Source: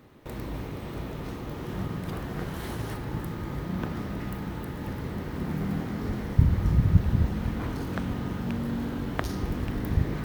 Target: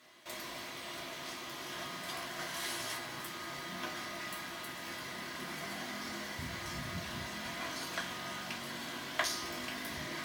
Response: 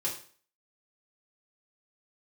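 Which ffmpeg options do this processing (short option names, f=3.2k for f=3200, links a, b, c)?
-filter_complex "[0:a]bandpass=f=5.5k:t=q:w=0.71:csg=0[a];[1:a]atrim=start_sample=2205,asetrate=83790,aresample=44100[b];[a][b]afir=irnorm=-1:irlink=0,volume=10.5dB"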